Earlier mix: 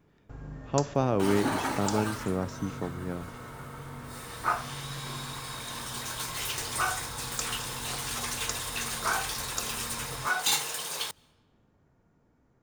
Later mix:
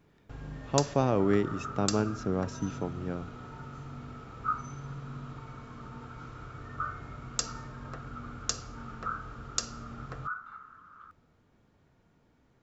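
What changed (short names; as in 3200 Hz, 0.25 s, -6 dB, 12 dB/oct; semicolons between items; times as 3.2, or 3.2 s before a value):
first sound: add bell 3400 Hz +9.5 dB 1.4 oct; second sound: add Butterworth band-pass 1300 Hz, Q 6.7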